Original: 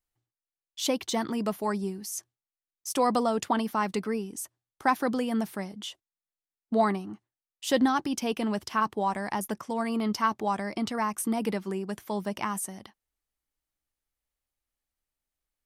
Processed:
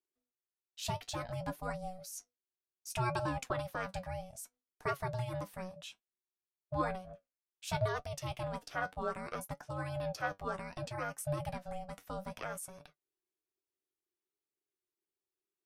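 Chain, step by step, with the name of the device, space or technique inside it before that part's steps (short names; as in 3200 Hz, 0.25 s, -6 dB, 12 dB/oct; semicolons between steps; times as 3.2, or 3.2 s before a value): alien voice (ring modulator 370 Hz; flange 0.62 Hz, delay 6.5 ms, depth 4.4 ms, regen +59%); 2.9–3.43 bell 2500 Hz +14.5 dB 0.27 oct; gain -3 dB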